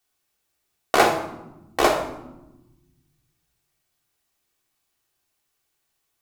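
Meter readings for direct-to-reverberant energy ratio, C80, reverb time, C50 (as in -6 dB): 0.5 dB, 10.0 dB, 1.0 s, 6.5 dB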